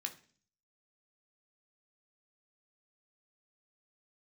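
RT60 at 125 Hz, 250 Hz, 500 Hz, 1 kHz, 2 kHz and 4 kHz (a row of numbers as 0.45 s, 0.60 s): 0.70 s, 0.65 s, 0.50 s, 0.40 s, 0.45 s, 0.50 s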